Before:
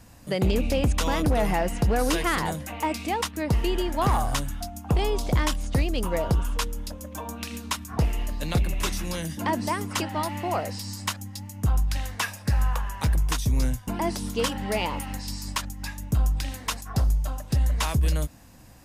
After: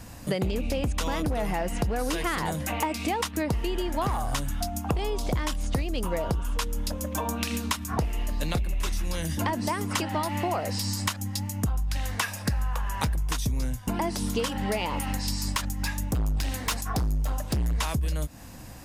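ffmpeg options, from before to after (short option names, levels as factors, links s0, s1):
-filter_complex "[0:a]asettb=1/sr,asplit=3[s0][s1][s2];[s0]atrim=end=8.344[s3];[s1]atrim=start=8.34:end=9.55,asetpts=PTS-STARTPTS,afade=t=in:d=0.004:c=qsin,afade=t=out:st=1.206:d=0.004:c=qsin,asubboost=boost=9.5:cutoff=83[s4];[s2]atrim=start=9.546[s5];[s3][s4]acrossfade=d=0.004:c1=hsin:c2=qsin[s6];[s6][s5]acrossfade=d=0.004:c1=qsin:c2=hsin,asplit=3[s7][s8][s9];[s7]afade=t=out:st=15.56:d=0.02[s10];[s8]volume=20,asoftclip=hard,volume=0.0501,afade=t=in:st=15.56:d=0.02,afade=t=out:st=17.74:d=0.02[s11];[s9]afade=t=in:st=17.74:d=0.02[s12];[s10][s11][s12]amix=inputs=3:normalize=0,acompressor=threshold=0.0282:ratio=12,volume=2.24"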